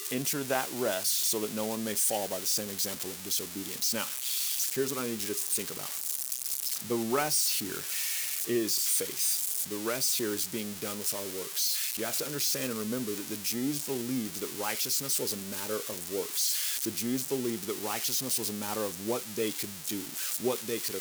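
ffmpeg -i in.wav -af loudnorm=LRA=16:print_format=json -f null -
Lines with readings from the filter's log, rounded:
"input_i" : "-29.9",
"input_tp" : "-14.3",
"input_lra" : "3.1",
"input_thresh" : "-39.9",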